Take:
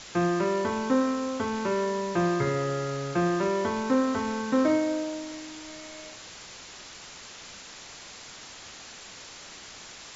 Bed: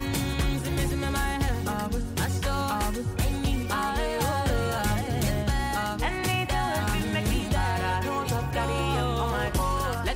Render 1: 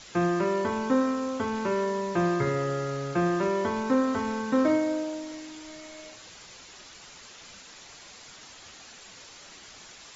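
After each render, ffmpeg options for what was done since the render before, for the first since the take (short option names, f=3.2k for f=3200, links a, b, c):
-af "afftdn=nr=6:nf=-46"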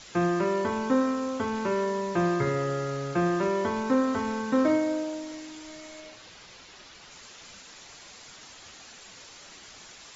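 -filter_complex "[0:a]asettb=1/sr,asplit=3[a][b][c];[a]atrim=end=6.004[d];[b]atrim=start=6:end=7.11,asetpts=PTS-STARTPTS,afade=t=in:d=0.004:c=qsin,afade=t=out:st=1.106:d=0.004:c=qsin,lowpass=5.6k[e];[c]atrim=start=7.106[f];[d][e]acrossfade=d=0.004:c1=hsin:c2=qsin[g];[g][f]acrossfade=d=0.004:c1=qsin:c2=hsin"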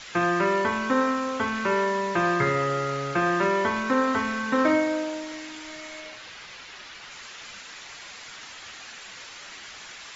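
-af "equalizer=f=1.9k:t=o:w=2.3:g=10,bandreject=f=88.04:t=h:w=4,bandreject=f=176.08:t=h:w=4,bandreject=f=264.12:t=h:w=4,bandreject=f=352.16:t=h:w=4,bandreject=f=440.2:t=h:w=4,bandreject=f=528.24:t=h:w=4,bandreject=f=616.28:t=h:w=4,bandreject=f=704.32:t=h:w=4,bandreject=f=792.36:t=h:w=4,bandreject=f=880.4:t=h:w=4,bandreject=f=968.44:t=h:w=4,bandreject=f=1.05648k:t=h:w=4,bandreject=f=1.14452k:t=h:w=4,bandreject=f=1.23256k:t=h:w=4,bandreject=f=1.3206k:t=h:w=4,bandreject=f=1.40864k:t=h:w=4,bandreject=f=1.49668k:t=h:w=4,bandreject=f=1.58472k:t=h:w=4,bandreject=f=1.67276k:t=h:w=4,bandreject=f=1.7608k:t=h:w=4,bandreject=f=1.84884k:t=h:w=4,bandreject=f=1.93688k:t=h:w=4,bandreject=f=2.02492k:t=h:w=4,bandreject=f=2.11296k:t=h:w=4,bandreject=f=2.201k:t=h:w=4,bandreject=f=2.28904k:t=h:w=4,bandreject=f=2.37708k:t=h:w=4,bandreject=f=2.46512k:t=h:w=4,bandreject=f=2.55316k:t=h:w=4,bandreject=f=2.6412k:t=h:w=4"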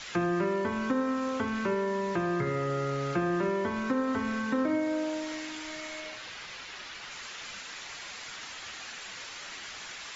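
-filter_complex "[0:a]alimiter=limit=-15dB:level=0:latency=1:release=451,acrossover=split=480[a][b];[b]acompressor=threshold=-34dB:ratio=6[c];[a][c]amix=inputs=2:normalize=0"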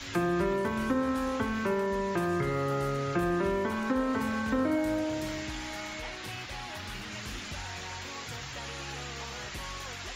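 -filter_complex "[1:a]volume=-16dB[a];[0:a][a]amix=inputs=2:normalize=0"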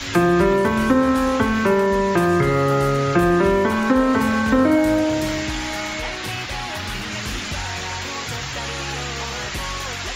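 -af "volume=12dB"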